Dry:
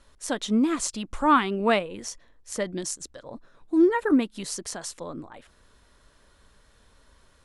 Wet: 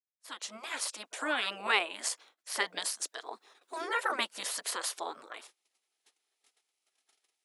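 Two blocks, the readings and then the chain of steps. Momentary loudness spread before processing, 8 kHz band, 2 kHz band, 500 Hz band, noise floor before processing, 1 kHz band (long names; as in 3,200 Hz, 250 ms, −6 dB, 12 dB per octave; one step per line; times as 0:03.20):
17 LU, −3.0 dB, −0.5 dB, −13.5 dB, −60 dBFS, −8.5 dB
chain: fade in at the beginning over 1.65 s
noise gate −53 dBFS, range −24 dB
high-pass filter 500 Hz 24 dB per octave
brickwall limiter −20.5 dBFS, peak gain reduction 10.5 dB
gate on every frequency bin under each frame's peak −10 dB weak
level +9 dB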